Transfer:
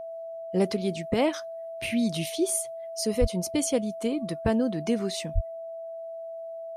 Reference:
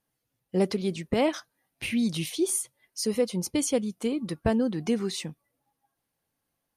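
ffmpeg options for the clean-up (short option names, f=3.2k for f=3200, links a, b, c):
-filter_complex "[0:a]bandreject=f=660:w=30,asplit=3[a][b][c];[a]afade=t=out:st=3.2:d=0.02[d];[b]highpass=f=140:w=0.5412,highpass=f=140:w=1.3066,afade=t=in:st=3.2:d=0.02,afade=t=out:st=3.32:d=0.02[e];[c]afade=t=in:st=3.32:d=0.02[f];[d][e][f]amix=inputs=3:normalize=0,asplit=3[g][h][i];[g]afade=t=out:st=5.34:d=0.02[j];[h]highpass=f=140:w=0.5412,highpass=f=140:w=1.3066,afade=t=in:st=5.34:d=0.02,afade=t=out:st=5.46:d=0.02[k];[i]afade=t=in:st=5.46:d=0.02[l];[j][k][l]amix=inputs=3:normalize=0"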